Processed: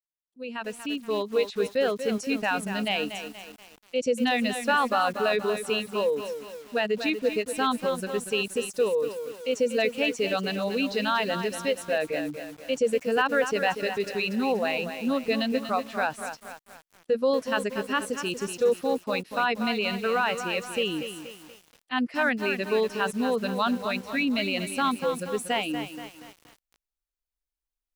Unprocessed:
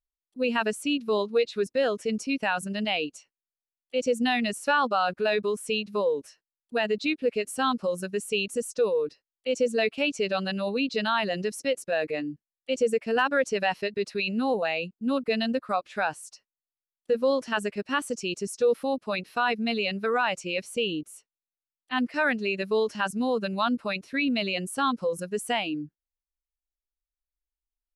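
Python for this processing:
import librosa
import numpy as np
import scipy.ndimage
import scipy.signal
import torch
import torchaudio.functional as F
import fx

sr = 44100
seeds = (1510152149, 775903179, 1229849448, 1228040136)

y = fx.fade_in_head(x, sr, length_s=1.55)
y = fx.echo_crushed(y, sr, ms=238, feedback_pct=55, bits=7, wet_db=-8.5)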